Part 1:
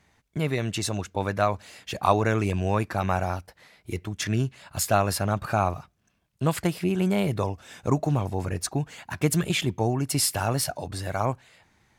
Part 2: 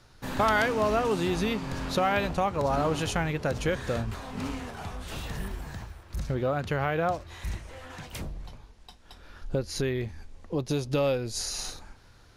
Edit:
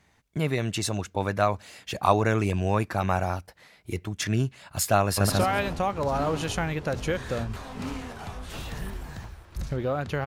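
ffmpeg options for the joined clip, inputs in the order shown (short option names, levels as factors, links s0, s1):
-filter_complex "[0:a]apad=whole_dur=10.26,atrim=end=10.26,atrim=end=5.302[s0];[1:a]atrim=start=1.878:end=6.84[s1];[s0][s1]acrossfade=d=0.004:c1=hsin:c2=hsin,asplit=2[s2][s3];[s3]afade=t=in:st=5.03:d=0.01,afade=t=out:st=5.3:d=0.01,aecho=0:1:140|280|420|560:1|0.3|0.09|0.027[s4];[s2][s4]amix=inputs=2:normalize=0"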